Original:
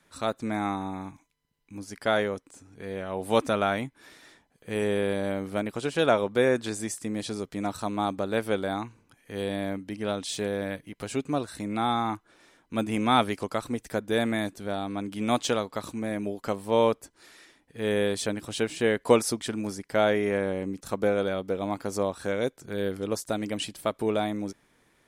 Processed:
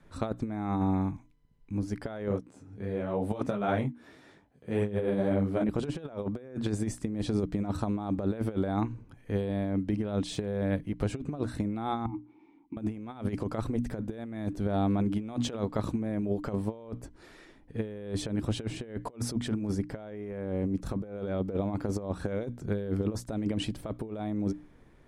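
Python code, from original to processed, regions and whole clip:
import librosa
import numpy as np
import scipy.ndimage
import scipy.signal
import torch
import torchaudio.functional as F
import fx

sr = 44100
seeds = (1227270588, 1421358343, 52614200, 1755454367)

y = fx.chain(x, sr, fx.highpass(hz=92.0, slope=12),
    fx.detune_double(cents=33), at=(2.28, 5.69))
y = fx.chain(y, sr, fx.over_compress(threshold_db=-37.0, ratio=-1.0),
    fx.vowel_filter(vowel='u'), at=(12.06, 12.77))
y = fx.tilt_eq(y, sr, slope=-3.5)
y = fx.hum_notches(y, sr, base_hz=60, count=5)
y = fx.over_compress(y, sr, threshold_db=-27.0, ratio=-0.5)
y = F.gain(torch.from_numpy(y), -3.0).numpy()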